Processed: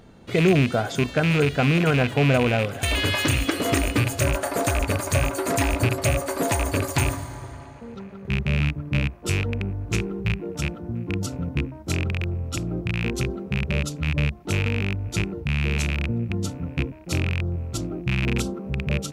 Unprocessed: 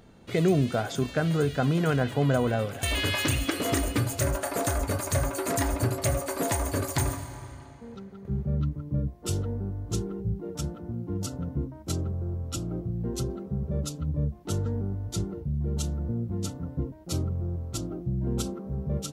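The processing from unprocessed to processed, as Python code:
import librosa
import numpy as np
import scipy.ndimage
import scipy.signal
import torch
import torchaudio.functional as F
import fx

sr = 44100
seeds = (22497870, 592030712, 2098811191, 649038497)

p1 = fx.rattle_buzz(x, sr, strikes_db=-26.0, level_db=-19.0)
p2 = fx.high_shelf(p1, sr, hz=6700.0, db=-4.0)
p3 = p2 + fx.echo_wet_bandpass(p2, sr, ms=1026, feedback_pct=60, hz=1000.0, wet_db=-23.0, dry=0)
y = p3 * 10.0 ** (4.5 / 20.0)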